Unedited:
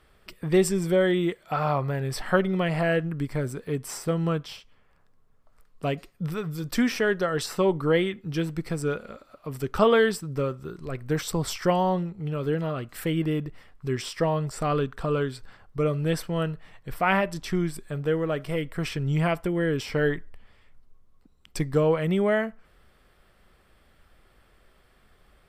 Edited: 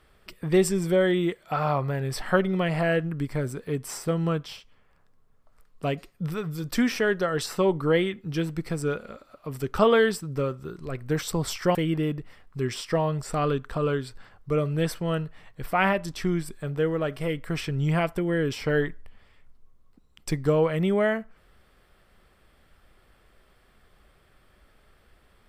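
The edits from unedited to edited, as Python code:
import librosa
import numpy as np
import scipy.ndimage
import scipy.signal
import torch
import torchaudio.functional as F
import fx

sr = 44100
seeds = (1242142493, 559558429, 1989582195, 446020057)

y = fx.edit(x, sr, fx.cut(start_s=11.75, length_s=1.28), tone=tone)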